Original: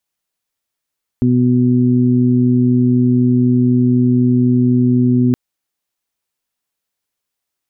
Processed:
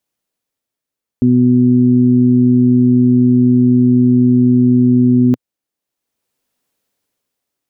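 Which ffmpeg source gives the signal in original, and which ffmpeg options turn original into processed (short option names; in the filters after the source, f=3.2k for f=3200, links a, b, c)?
-f lavfi -i "aevalsrc='0.188*sin(2*PI*124*t)+0.282*sin(2*PI*248*t)+0.0668*sin(2*PI*372*t)':d=4.12:s=44100"
-af "equalizer=f=125:t=o:w=1:g=6,equalizer=f=250:t=o:w=1:g=10,equalizer=f=500:t=o:w=1:g=6,dynaudnorm=f=120:g=13:m=6.5dB,equalizer=f=200:w=0.83:g=-4"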